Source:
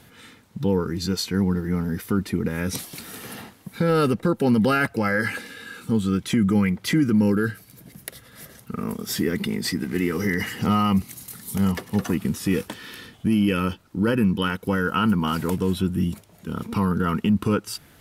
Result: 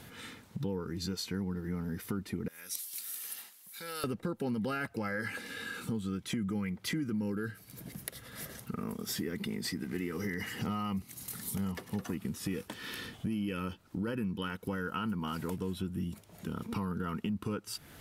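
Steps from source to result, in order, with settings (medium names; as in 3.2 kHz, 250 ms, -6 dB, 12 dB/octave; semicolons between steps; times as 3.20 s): 2.48–4.04 s: differentiator; compression 3:1, threshold -37 dBFS, peak gain reduction 16 dB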